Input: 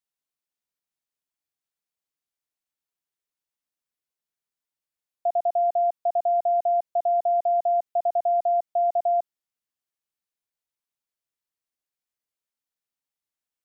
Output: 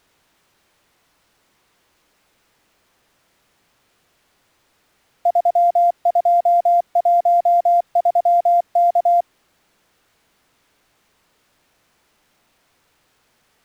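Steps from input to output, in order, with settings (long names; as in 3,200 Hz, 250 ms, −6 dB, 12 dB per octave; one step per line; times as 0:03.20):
bit-depth reduction 10 bits, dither triangular
slack as between gear wheels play −49.5 dBFS
level +7.5 dB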